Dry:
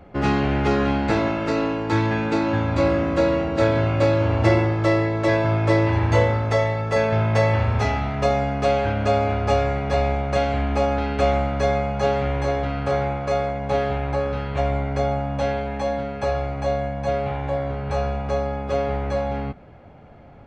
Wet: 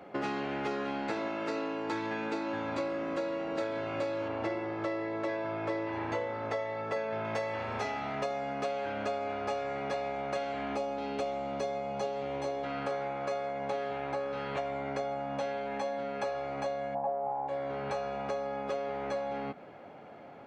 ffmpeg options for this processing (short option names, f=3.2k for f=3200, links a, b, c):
-filter_complex "[0:a]asettb=1/sr,asplit=3[a][b][c];[a]atrim=end=4.284[d];[b]atrim=start=4.28:end=7.25,asetpts=PTS-STARTPTS,afade=t=in:d=0.004:c=qsin,afade=t=out:st=2.966:d=0.004:c=qsin,aemphasis=mode=reproduction:type=50kf[e];[c]atrim=start=7.246[f];[d][e]acrossfade=d=0.004:c1=hsin:c2=qsin[g];[g][f]acrossfade=d=0.004:c1=qsin:c2=hsin,asettb=1/sr,asplit=3[h][i][j];[h]atrim=end=10.764[k];[i]atrim=start=10.76:end=12.64,asetpts=PTS-STARTPTS,afade=t=in:d=0.004:c=qsin,afade=t=out:st=1.876:d=0.004:c=qsin,equalizer=f=1.6k:t=o:w=1.1:g=-8.5[l];[j]atrim=start=12.636[m];[k][l]acrossfade=d=0.004:c1=hsin:c2=qsin[n];[n][m]acrossfade=d=0.004:c1=qsin:c2=hsin,asplit=3[o][p][q];[o]afade=t=out:st=16.94:d=0.02[r];[p]lowpass=f=850:t=q:w=5.3,afade=t=in:st=16.94:d=0.02,afade=t=out:st=17.47:d=0.02[s];[q]afade=t=in:st=17.47:d=0.02[t];[r][s][t]amix=inputs=3:normalize=0,highpass=280,acompressor=threshold=-32dB:ratio=6"